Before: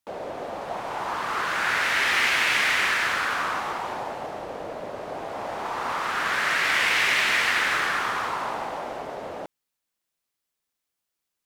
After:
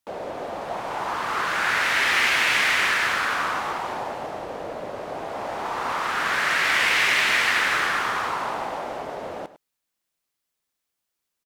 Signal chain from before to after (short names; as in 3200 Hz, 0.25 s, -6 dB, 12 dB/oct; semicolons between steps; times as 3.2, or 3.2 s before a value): echo 0.103 s -15.5 dB; gain +1.5 dB